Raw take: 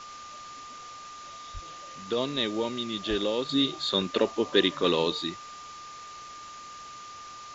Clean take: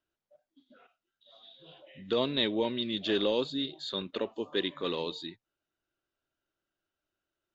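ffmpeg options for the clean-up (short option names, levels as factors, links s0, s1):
-filter_complex "[0:a]bandreject=f=1200:w=30,asplit=3[s0][s1][s2];[s0]afade=t=out:st=1.53:d=0.02[s3];[s1]highpass=f=140:w=0.5412,highpass=f=140:w=1.3066,afade=t=in:st=1.53:d=0.02,afade=t=out:st=1.65:d=0.02[s4];[s2]afade=t=in:st=1.65:d=0.02[s5];[s3][s4][s5]amix=inputs=3:normalize=0,asplit=3[s6][s7][s8];[s6]afade=t=out:st=3.09:d=0.02[s9];[s7]highpass=f=140:w=0.5412,highpass=f=140:w=1.3066,afade=t=in:st=3.09:d=0.02,afade=t=out:st=3.21:d=0.02[s10];[s8]afade=t=in:st=3.21:d=0.02[s11];[s9][s10][s11]amix=inputs=3:normalize=0,afwtdn=0.0056,asetnsamples=n=441:p=0,asendcmd='3.49 volume volume -8.5dB',volume=1"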